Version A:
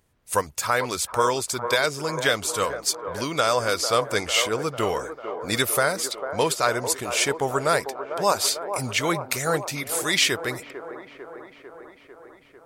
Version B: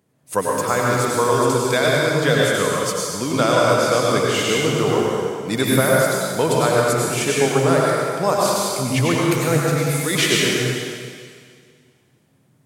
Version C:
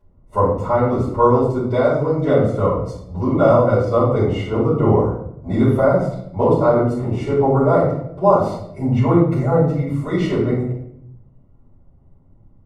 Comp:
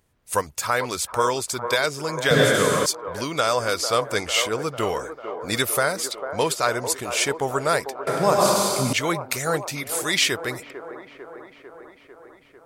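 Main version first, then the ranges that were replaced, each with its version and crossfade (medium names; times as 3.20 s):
A
2.31–2.86 s: from B
8.07–8.93 s: from B
not used: C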